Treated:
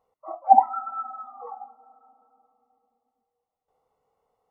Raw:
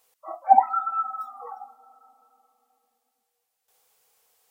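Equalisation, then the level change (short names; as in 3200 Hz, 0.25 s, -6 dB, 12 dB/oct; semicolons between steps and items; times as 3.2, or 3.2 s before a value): polynomial smoothing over 65 samples; low shelf 370 Hz +6.5 dB; 0.0 dB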